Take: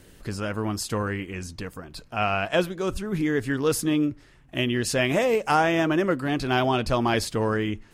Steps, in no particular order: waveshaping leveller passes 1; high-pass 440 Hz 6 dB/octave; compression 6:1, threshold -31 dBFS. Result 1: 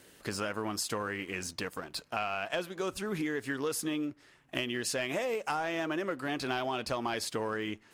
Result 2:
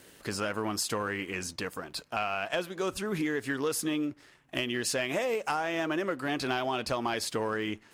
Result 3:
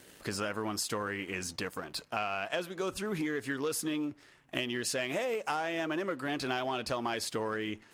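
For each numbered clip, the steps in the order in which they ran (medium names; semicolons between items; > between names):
high-pass > waveshaping leveller > compression; high-pass > compression > waveshaping leveller; waveshaping leveller > high-pass > compression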